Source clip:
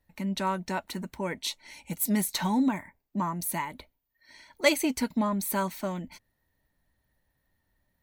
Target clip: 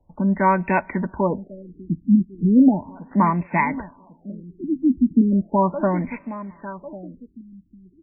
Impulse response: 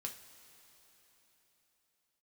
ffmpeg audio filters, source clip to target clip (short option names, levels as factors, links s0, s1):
-filter_complex "[0:a]aemphasis=mode=production:type=50kf,bandreject=f=1300:w=8.4,acrossover=split=120|2900[s0][s1][s2];[s2]acontrast=24[s3];[s0][s1][s3]amix=inputs=3:normalize=0,aecho=1:1:1098|2196|3294:0.15|0.0539|0.0194,asplit=2[s4][s5];[1:a]atrim=start_sample=2205[s6];[s5][s6]afir=irnorm=-1:irlink=0,volume=0.188[s7];[s4][s7]amix=inputs=2:normalize=0,alimiter=level_in=4.73:limit=0.891:release=50:level=0:latency=1,afftfilt=real='re*lt(b*sr/1024,340*pow(2700/340,0.5+0.5*sin(2*PI*0.36*pts/sr)))':imag='im*lt(b*sr/1024,340*pow(2700/340,0.5+0.5*sin(2*PI*0.36*pts/sr)))':win_size=1024:overlap=0.75,volume=0.75"